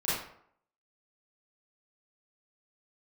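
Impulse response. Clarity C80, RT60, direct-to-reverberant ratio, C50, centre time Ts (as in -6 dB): 4.5 dB, 0.65 s, -11.5 dB, -0.5 dB, 65 ms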